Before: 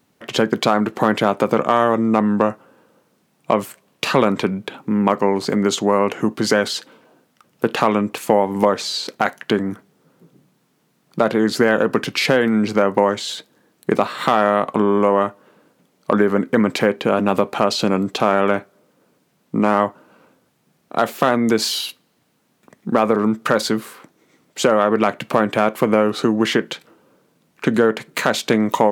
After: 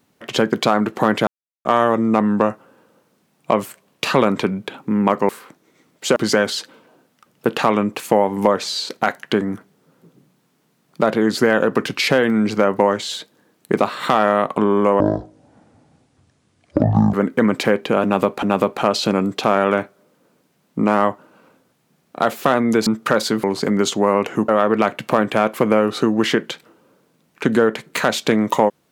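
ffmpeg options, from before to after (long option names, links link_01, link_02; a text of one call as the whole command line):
ffmpeg -i in.wav -filter_complex "[0:a]asplit=11[link_01][link_02][link_03][link_04][link_05][link_06][link_07][link_08][link_09][link_10][link_11];[link_01]atrim=end=1.27,asetpts=PTS-STARTPTS,afade=type=out:start_time=1.266:duration=0.004:curve=hsin[link_12];[link_02]atrim=start=1.27:end=1.65,asetpts=PTS-STARTPTS,volume=0[link_13];[link_03]atrim=start=1.65:end=5.292,asetpts=PTS-STARTPTS,afade=type=in:duration=0.004:curve=hsin[link_14];[link_04]atrim=start=23.828:end=24.702[link_15];[link_05]atrim=start=6.338:end=15.184[link_16];[link_06]atrim=start=15.18:end=16.29,asetpts=PTS-STARTPTS,asetrate=22932,aresample=44100[link_17];[link_07]atrim=start=16.286:end=17.582[link_18];[link_08]atrim=start=17.188:end=21.632[link_19];[link_09]atrim=start=23.258:end=23.832[link_20];[link_10]atrim=start=5.288:end=6.342[link_21];[link_11]atrim=start=24.698[link_22];[link_12][link_13][link_14]concat=n=3:v=0:a=1[link_23];[link_23][link_15]acrossfade=duration=0.004:curve1=hsin:curve2=hsin[link_24];[link_24][link_16]acrossfade=duration=0.004:curve1=hsin:curve2=hsin[link_25];[link_25][link_17]acrossfade=duration=0.004:curve1=hsin:curve2=hsin[link_26];[link_26][link_18]acrossfade=duration=0.004:curve1=hsin:curve2=hsin[link_27];[link_27][link_19]acrossfade=duration=0.004:curve1=hsin:curve2=hsin[link_28];[link_28][link_20]acrossfade=duration=0.004:curve1=hsin:curve2=hsin[link_29];[link_29][link_21]acrossfade=duration=0.004:curve1=hsin:curve2=hsin[link_30];[link_30][link_22]acrossfade=duration=0.004:curve1=hsin:curve2=hsin" out.wav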